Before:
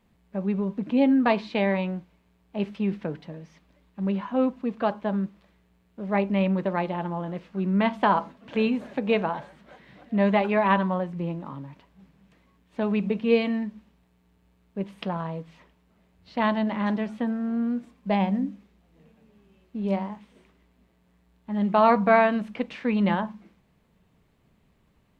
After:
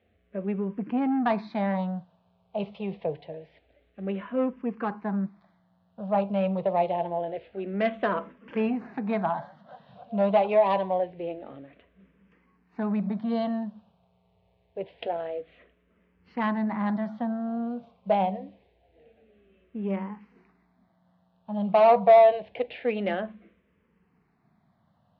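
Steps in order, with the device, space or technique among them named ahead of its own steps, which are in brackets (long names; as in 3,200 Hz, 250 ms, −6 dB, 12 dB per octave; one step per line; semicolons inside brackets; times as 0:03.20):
barber-pole phaser into a guitar amplifier (frequency shifter mixed with the dry sound −0.26 Hz; soft clipping −19.5 dBFS, distortion −13 dB; loudspeaker in its box 77–4,100 Hz, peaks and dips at 85 Hz +9 dB, 290 Hz −4 dB, 480 Hz +5 dB, 700 Hz +10 dB)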